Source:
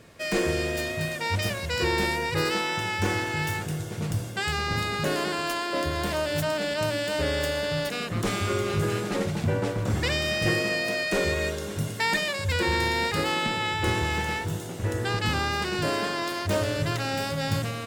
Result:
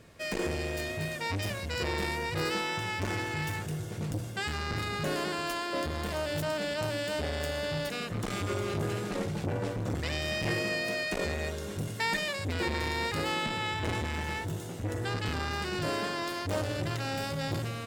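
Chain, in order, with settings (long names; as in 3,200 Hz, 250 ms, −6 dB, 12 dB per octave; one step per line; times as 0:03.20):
low-shelf EQ 99 Hz +5.5 dB
saturating transformer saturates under 510 Hz
level −4.5 dB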